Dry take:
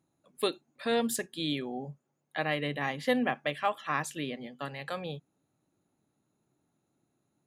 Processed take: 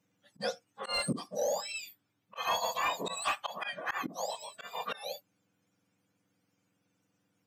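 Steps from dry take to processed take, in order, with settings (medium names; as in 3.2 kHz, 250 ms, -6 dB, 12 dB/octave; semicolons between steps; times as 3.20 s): spectrum inverted on a logarithmic axis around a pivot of 1.4 kHz; slow attack 157 ms; overdrive pedal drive 12 dB, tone 2.2 kHz, clips at -21 dBFS; trim +2 dB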